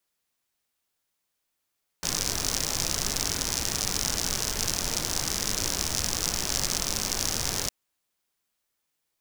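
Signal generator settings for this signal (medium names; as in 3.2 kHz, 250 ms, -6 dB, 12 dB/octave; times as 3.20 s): rain from filtered ticks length 5.66 s, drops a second 83, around 5.7 kHz, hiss -2 dB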